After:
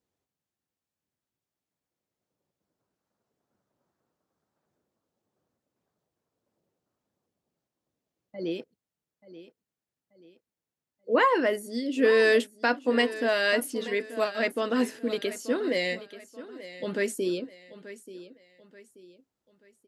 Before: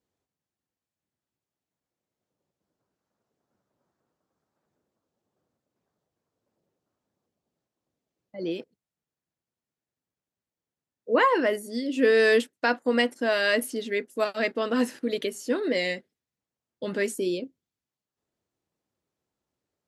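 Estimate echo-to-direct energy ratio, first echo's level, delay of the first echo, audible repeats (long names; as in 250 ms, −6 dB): −15.0 dB, −15.5 dB, 883 ms, 3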